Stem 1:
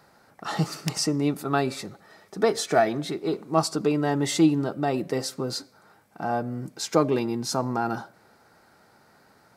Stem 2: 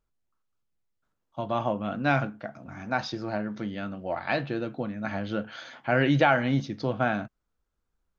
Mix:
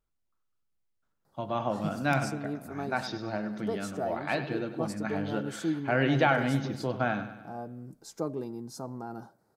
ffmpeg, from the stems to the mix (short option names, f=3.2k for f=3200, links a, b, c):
-filter_complex "[0:a]equalizer=f=2.5k:w=0.72:g=-15,adelay=1250,volume=-10.5dB[a];[1:a]volume=-3dB,asplit=2[b][c];[c]volume=-12dB,aecho=0:1:99|198|297|396|495|594|693|792:1|0.53|0.281|0.149|0.0789|0.0418|0.0222|0.0117[d];[a][b][d]amix=inputs=3:normalize=0"